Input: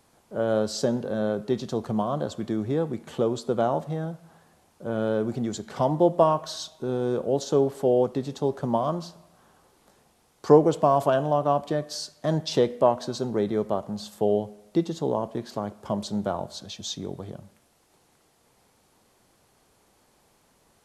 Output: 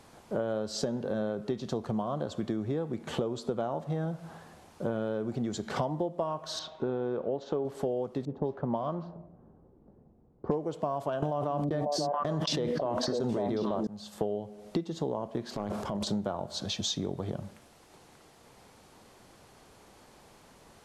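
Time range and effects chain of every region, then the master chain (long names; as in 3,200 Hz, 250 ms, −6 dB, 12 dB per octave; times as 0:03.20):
0:06.59–0:07.65: low-pass filter 2,500 Hz + low-shelf EQ 250 Hz −6.5 dB
0:08.25–0:10.64: low-pass that shuts in the quiet parts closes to 320 Hz, open at −17 dBFS + hard clipping −5.5 dBFS
0:11.22–0:13.87: noise gate −37 dBFS, range −38 dB + echo through a band-pass that steps 273 ms, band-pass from 220 Hz, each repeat 1.4 octaves, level −1 dB + envelope flattener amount 100%
0:15.56–0:16.07: downward compressor 4 to 1, threshold −37 dBFS + transient designer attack −4 dB, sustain +11 dB
whole clip: high-shelf EQ 8,800 Hz −10 dB; downward compressor 10 to 1, threshold −36 dBFS; level +7.5 dB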